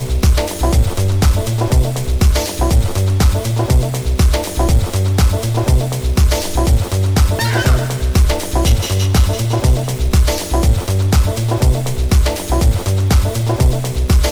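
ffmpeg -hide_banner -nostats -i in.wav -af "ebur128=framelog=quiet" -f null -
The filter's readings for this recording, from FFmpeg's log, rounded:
Integrated loudness:
  I:         -15.4 LUFS
  Threshold: -25.4 LUFS
Loudness range:
  LRA:         0.4 LU
  Threshold: -35.3 LUFS
  LRA low:   -15.5 LUFS
  LRA high:  -15.1 LUFS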